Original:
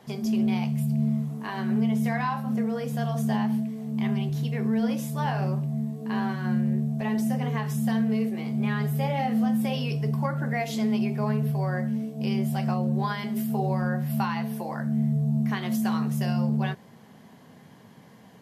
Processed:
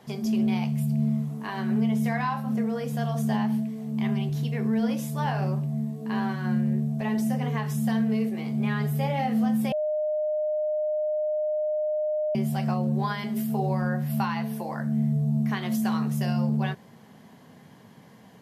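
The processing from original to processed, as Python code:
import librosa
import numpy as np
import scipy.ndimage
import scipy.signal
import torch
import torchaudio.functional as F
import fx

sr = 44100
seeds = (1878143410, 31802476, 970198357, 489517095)

y = fx.edit(x, sr, fx.bleep(start_s=9.72, length_s=2.63, hz=610.0, db=-23.5), tone=tone)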